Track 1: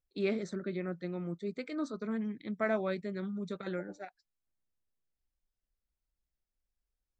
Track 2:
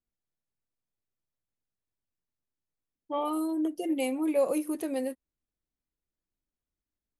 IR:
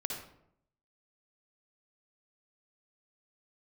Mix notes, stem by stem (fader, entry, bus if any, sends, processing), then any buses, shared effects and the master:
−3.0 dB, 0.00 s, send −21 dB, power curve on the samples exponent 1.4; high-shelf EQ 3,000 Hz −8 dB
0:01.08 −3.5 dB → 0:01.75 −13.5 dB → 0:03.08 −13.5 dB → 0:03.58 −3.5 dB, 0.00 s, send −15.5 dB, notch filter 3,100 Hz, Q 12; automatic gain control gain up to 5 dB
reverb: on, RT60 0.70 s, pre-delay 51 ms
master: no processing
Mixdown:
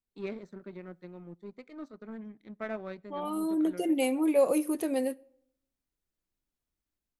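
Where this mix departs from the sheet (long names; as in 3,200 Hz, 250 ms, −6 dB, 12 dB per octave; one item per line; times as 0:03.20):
stem 2: missing notch filter 3,100 Hz, Q 12
reverb return −8.0 dB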